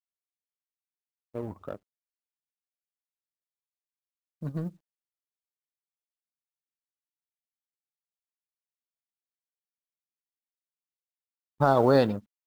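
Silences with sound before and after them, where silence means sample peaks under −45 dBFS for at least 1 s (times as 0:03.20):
0:01.77–0:04.42
0:04.70–0:11.60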